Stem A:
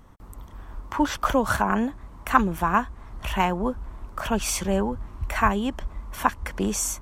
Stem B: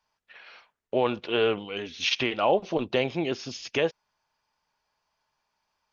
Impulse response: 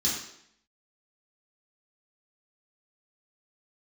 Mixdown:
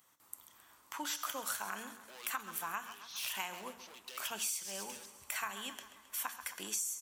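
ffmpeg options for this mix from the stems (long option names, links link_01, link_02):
-filter_complex "[0:a]lowshelf=frequency=110:gain=7.5,volume=2.5dB,asplit=4[link_01][link_02][link_03][link_04];[link_02]volume=-20dB[link_05];[link_03]volume=-16dB[link_06];[1:a]highshelf=frequency=4200:gain=7,alimiter=limit=-18dB:level=0:latency=1:release=20,volume=29.5dB,asoftclip=hard,volume=-29.5dB,adelay=1150,volume=2dB[link_07];[link_04]apad=whole_len=312027[link_08];[link_07][link_08]sidechaincompress=threshold=-26dB:ratio=8:attack=35:release=695[link_09];[2:a]atrim=start_sample=2205[link_10];[link_05][link_10]afir=irnorm=-1:irlink=0[link_11];[link_06]aecho=0:1:133|266|399|532|665|798|931|1064|1197:1|0.57|0.325|0.185|0.106|0.0602|0.0343|0.0195|0.0111[link_12];[link_01][link_09][link_11][link_12]amix=inputs=4:normalize=0,highpass=120,aderivative,acompressor=threshold=-34dB:ratio=16"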